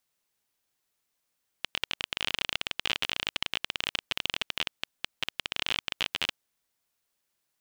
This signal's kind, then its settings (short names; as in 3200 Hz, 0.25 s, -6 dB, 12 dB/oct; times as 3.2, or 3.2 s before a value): random clicks 26/s -10.5 dBFS 4.67 s